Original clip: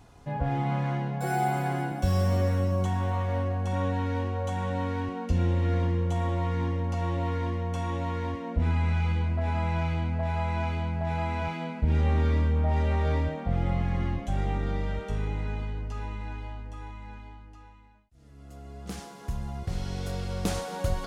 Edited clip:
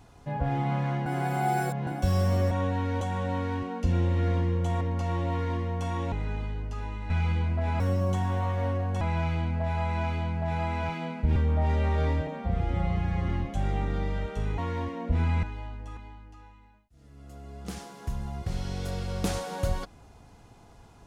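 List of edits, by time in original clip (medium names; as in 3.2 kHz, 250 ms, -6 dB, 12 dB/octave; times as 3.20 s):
1.06–1.87 s: reverse
2.51–3.72 s: move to 9.60 s
4.22–4.47 s: delete
6.27–6.74 s: delete
8.05–8.90 s: swap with 15.31–16.29 s
11.95–12.43 s: delete
13.34–14.02 s: stretch 1.5×
16.83–17.18 s: delete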